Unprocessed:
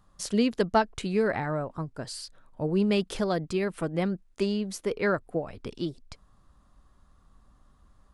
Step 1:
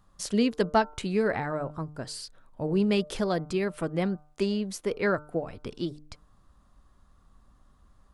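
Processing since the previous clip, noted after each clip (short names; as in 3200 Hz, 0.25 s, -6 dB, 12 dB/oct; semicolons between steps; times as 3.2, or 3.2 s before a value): de-hum 150.2 Hz, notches 10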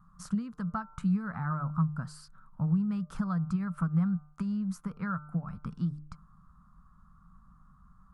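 compressor 12:1, threshold -30 dBFS, peak gain reduction 13 dB; EQ curve 110 Hz 0 dB, 170 Hz +13 dB, 370 Hz -21 dB, 640 Hz -13 dB, 1300 Hz +9 dB, 1900 Hz -11 dB, 3300 Hz -18 dB, 4900 Hz -14 dB, 7900 Hz -11 dB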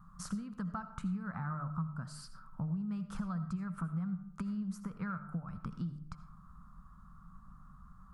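compressor 2.5:1, threshold -43 dBFS, peak gain reduction 13.5 dB; reverb RT60 0.60 s, pre-delay 40 ms, DRR 12 dB; gain +3 dB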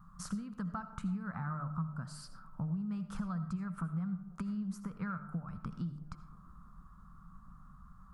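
band-limited delay 0.334 s, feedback 63%, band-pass 470 Hz, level -19 dB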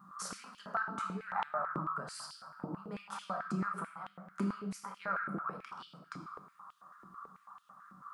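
shoebox room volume 360 m³, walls mixed, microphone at 1.2 m; stepped high-pass 9.1 Hz 330–3100 Hz; gain +2.5 dB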